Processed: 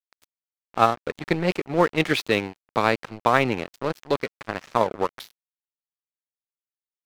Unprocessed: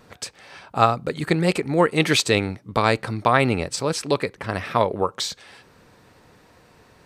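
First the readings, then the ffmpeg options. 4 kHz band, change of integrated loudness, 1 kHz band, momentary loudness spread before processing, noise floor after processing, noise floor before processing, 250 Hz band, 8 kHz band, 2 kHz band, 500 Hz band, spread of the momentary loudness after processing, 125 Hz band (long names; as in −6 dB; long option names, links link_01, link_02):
−6.5 dB, −2.5 dB, −1.5 dB, 11 LU, below −85 dBFS, −55 dBFS, −3.0 dB, −13.5 dB, −2.0 dB, −2.0 dB, 10 LU, −6.5 dB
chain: -af "highpass=160,lowpass=3400,aeval=exprs='sgn(val(0))*max(abs(val(0))-0.0335,0)':channel_layout=same"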